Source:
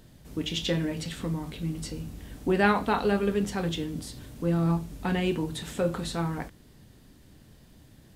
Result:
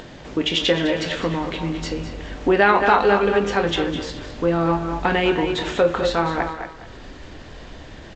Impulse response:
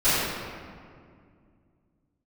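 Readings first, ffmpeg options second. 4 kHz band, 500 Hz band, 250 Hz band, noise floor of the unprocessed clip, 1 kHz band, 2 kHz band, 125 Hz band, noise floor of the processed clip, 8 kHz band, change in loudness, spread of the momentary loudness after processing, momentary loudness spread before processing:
+10.5 dB, +10.5 dB, +5.0 dB, −55 dBFS, +11.5 dB, +11.0 dB, +1.5 dB, −40 dBFS, +2.5 dB, +8.5 dB, 24 LU, 13 LU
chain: -filter_complex "[0:a]bass=frequency=250:gain=-14,treble=frequency=4000:gain=-11,asplit=2[link_01][link_02];[link_02]adelay=230,highpass=300,lowpass=3400,asoftclip=type=hard:threshold=-17dB,volume=-10dB[link_03];[link_01][link_03]amix=inputs=2:normalize=0,acompressor=mode=upward:threshold=-48dB:ratio=2.5,asplit=2[link_04][link_05];[link_05]aecho=0:1:205|410|615:0.237|0.0688|0.0199[link_06];[link_04][link_06]amix=inputs=2:normalize=0,asubboost=boost=3.5:cutoff=83,bandreject=frequency=217.1:width_type=h:width=4,bandreject=frequency=434.2:width_type=h:width=4,bandreject=frequency=651.3:width_type=h:width=4,bandreject=frequency=868.4:width_type=h:width=4,bandreject=frequency=1085.5:width_type=h:width=4,bandreject=frequency=1302.6:width_type=h:width=4,bandreject=frequency=1519.7:width_type=h:width=4,bandreject=frequency=1736.8:width_type=h:width=4,bandreject=frequency=1953.9:width_type=h:width=4,bandreject=frequency=2171:width_type=h:width=4,bandreject=frequency=2388.1:width_type=h:width=4,bandreject=frequency=2605.2:width_type=h:width=4,bandreject=frequency=2822.3:width_type=h:width=4,bandreject=frequency=3039.4:width_type=h:width=4,bandreject=frequency=3256.5:width_type=h:width=4,bandreject=frequency=3473.6:width_type=h:width=4,bandreject=frequency=3690.7:width_type=h:width=4,bandreject=frequency=3907.8:width_type=h:width=4,bandreject=frequency=4124.9:width_type=h:width=4,bandreject=frequency=4342:width_type=h:width=4,bandreject=frequency=4559.1:width_type=h:width=4,bandreject=frequency=4776.2:width_type=h:width=4,bandreject=frequency=4993.3:width_type=h:width=4,bandreject=frequency=5210.4:width_type=h:width=4,bandreject=frequency=5427.5:width_type=h:width=4,bandreject=frequency=5644.6:width_type=h:width=4,bandreject=frequency=5861.7:width_type=h:width=4,bandreject=frequency=6078.8:width_type=h:width=4,bandreject=frequency=6295.9:width_type=h:width=4,bandreject=frequency=6513:width_type=h:width=4,bandreject=frequency=6730.1:width_type=h:width=4,bandreject=frequency=6947.2:width_type=h:width=4,asplit=2[link_07][link_08];[link_08]acompressor=threshold=-34dB:ratio=6,volume=2.5dB[link_09];[link_07][link_09]amix=inputs=2:normalize=0,alimiter=level_in=9.5dB:limit=-1dB:release=50:level=0:latency=1,volume=-1dB" -ar 16000 -c:a g722

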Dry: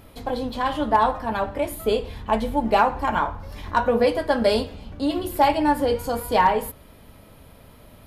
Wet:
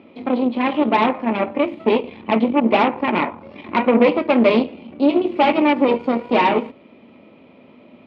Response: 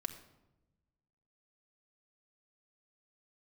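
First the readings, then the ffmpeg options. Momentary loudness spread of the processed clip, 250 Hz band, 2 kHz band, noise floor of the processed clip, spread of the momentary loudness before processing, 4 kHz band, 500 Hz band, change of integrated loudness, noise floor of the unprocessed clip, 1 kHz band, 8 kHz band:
7 LU, +9.0 dB, +5.0 dB, −48 dBFS, 9 LU, +2.5 dB, +4.5 dB, +4.5 dB, −49 dBFS, +1.0 dB, below −20 dB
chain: -af "aeval=exprs='0.398*(cos(1*acos(clip(val(0)/0.398,-1,1)))-cos(1*PI/2))+0.1*(cos(6*acos(clip(val(0)/0.398,-1,1)))-cos(6*PI/2))':channel_layout=same,highpass=frequency=130:width=0.5412,highpass=frequency=130:width=1.3066,equalizer=frequency=130:width_type=q:width=4:gain=-10,equalizer=frequency=240:width_type=q:width=4:gain=10,equalizer=frequency=350:width_type=q:width=4:gain=9,equalizer=frequency=560:width_type=q:width=4:gain=4,equalizer=frequency=1600:width_type=q:width=4:gain=-9,equalizer=frequency=2400:width_type=q:width=4:gain=8,lowpass=frequency=3200:width=0.5412,lowpass=frequency=3200:width=1.3066"

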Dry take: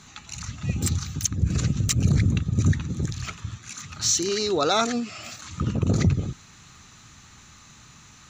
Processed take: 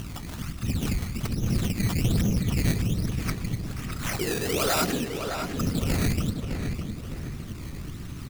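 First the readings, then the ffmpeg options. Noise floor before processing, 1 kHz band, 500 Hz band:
−50 dBFS, −3.0 dB, −2.5 dB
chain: -filter_complex "[0:a]bass=frequency=250:gain=4,treble=frequency=4000:gain=-13,aeval=exprs='val(0)+0.0158*(sin(2*PI*60*n/s)+sin(2*PI*2*60*n/s)/2+sin(2*PI*3*60*n/s)/3+sin(2*PI*4*60*n/s)/4+sin(2*PI*5*60*n/s)/5)':channel_layout=same,afftfilt=real='hypot(re,im)*cos(2*PI*random(0))':imag='hypot(re,im)*sin(2*PI*random(1))':win_size=512:overlap=0.75,acrossover=split=6900[link_01][link_02];[link_01]asoftclip=type=tanh:threshold=-23.5dB[link_03];[link_03][link_02]amix=inputs=2:normalize=0,acrusher=samples=14:mix=1:aa=0.000001:lfo=1:lforange=14:lforate=1.2,asplit=2[link_04][link_05];[link_05]adelay=609,lowpass=frequency=3100:poles=1,volume=-5.5dB,asplit=2[link_06][link_07];[link_07]adelay=609,lowpass=frequency=3100:poles=1,volume=0.41,asplit=2[link_08][link_09];[link_09]adelay=609,lowpass=frequency=3100:poles=1,volume=0.41,asplit=2[link_10][link_11];[link_11]adelay=609,lowpass=frequency=3100:poles=1,volume=0.41,asplit=2[link_12][link_13];[link_13]adelay=609,lowpass=frequency=3100:poles=1,volume=0.41[link_14];[link_06][link_08][link_10][link_12][link_14]amix=inputs=5:normalize=0[link_15];[link_04][link_15]amix=inputs=2:normalize=0,acompressor=mode=upward:threshold=-34dB:ratio=2.5,highshelf=frequency=2500:gain=9,bandreject=frequency=870:width=19,volume=3.5dB"

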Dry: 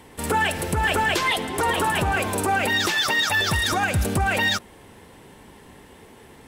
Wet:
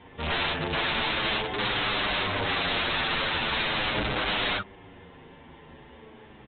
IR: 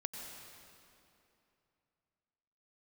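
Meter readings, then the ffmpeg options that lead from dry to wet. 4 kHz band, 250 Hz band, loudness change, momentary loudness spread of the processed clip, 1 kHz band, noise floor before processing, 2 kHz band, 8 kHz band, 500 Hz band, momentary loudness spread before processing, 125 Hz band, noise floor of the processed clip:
−2.0 dB, −6.0 dB, −5.0 dB, 2 LU, −7.0 dB, −48 dBFS, −5.5 dB, below −40 dB, −5.0 dB, 3 LU, −9.0 dB, −50 dBFS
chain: -filter_complex "[0:a]asplit=2[link_01][link_02];[link_02]adelay=39,volume=-3.5dB[link_03];[link_01][link_03]amix=inputs=2:normalize=0,aresample=8000,aeval=exprs='(mod(9.44*val(0)+1,2)-1)/9.44':channel_layout=same,aresample=44100,asplit=2[link_04][link_05];[link_05]adelay=8.1,afreqshift=-0.41[link_06];[link_04][link_06]amix=inputs=2:normalize=1"

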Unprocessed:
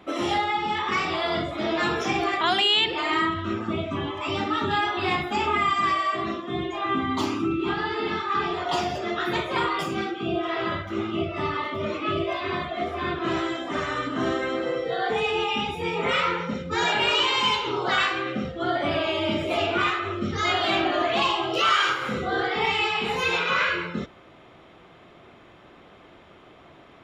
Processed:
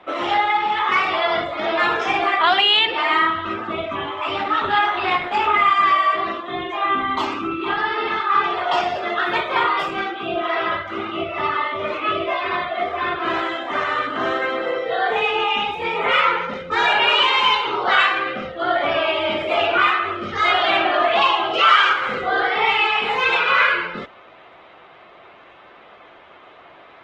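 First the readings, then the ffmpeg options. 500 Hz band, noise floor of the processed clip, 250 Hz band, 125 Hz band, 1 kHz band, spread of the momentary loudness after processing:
+3.5 dB, −46 dBFS, −2.5 dB, −6.5 dB, +7.5 dB, 10 LU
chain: -filter_complex "[0:a]acrossover=split=480 3700:gain=0.178 1 0.126[link_01][link_02][link_03];[link_01][link_02][link_03]amix=inputs=3:normalize=0,volume=8dB" -ar 48000 -c:a libopus -b:a 16k

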